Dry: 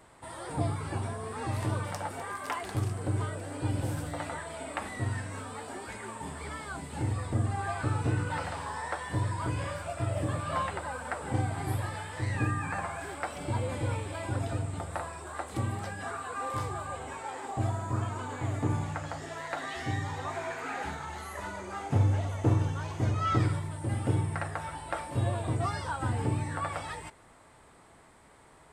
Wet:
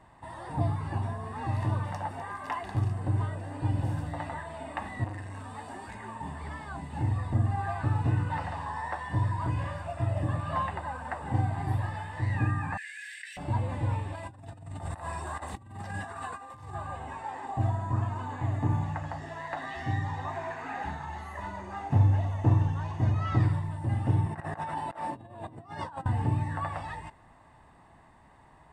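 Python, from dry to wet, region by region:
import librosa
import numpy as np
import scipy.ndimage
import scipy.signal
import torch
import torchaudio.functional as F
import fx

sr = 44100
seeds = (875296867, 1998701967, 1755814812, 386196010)

y = fx.chain(x, sr, fx.high_shelf(hz=5700.0, db=7.5),
    fx.transformer_sat(knee_hz=910.0), at=(5.04, 5.95))
y = fx.chain(y, sr, fx.steep_highpass(hz=1700.0, slope=96),
    fx.env_flatten(amount_pct=100), at=(12.77, 13.37))
y = fx.chain(y, sr, fx.high_shelf(hz=5300.0, db=9.5),
    fx.over_compress(threshold_db=-39.0, ratio=-0.5), at=(14.15, 16.75))
y = fx.chain(y, sr, fx.highpass(hz=290.0, slope=12),
    fx.low_shelf(hz=450.0, db=11.0),
    fx.over_compress(threshold_db=-38.0, ratio=-0.5), at=(24.26, 26.06))
y = fx.lowpass(y, sr, hz=1800.0, slope=6)
y = y + 0.53 * np.pad(y, (int(1.1 * sr / 1000.0), 0))[:len(y)]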